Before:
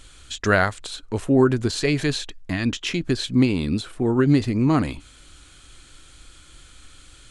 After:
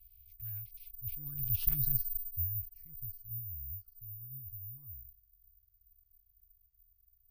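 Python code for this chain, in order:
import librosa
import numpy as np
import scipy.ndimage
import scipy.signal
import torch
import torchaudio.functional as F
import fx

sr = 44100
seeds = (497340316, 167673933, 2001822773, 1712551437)

y = fx.doppler_pass(x, sr, speed_mps=32, closest_m=5.1, pass_at_s=1.76)
y = fx.cheby_harmonics(y, sr, harmonics=(5,), levels_db=(-19,), full_scale_db=-9.0)
y = scipy.signal.sosfilt(scipy.signal.cheby2(4, 40, [190.0, 7700.0], 'bandstop', fs=sr, output='sos'), y)
y = (np.kron(y[::3], np.eye(3)[0]) * 3)[:len(y)]
y = F.gain(torch.from_numpy(y), 2.5).numpy()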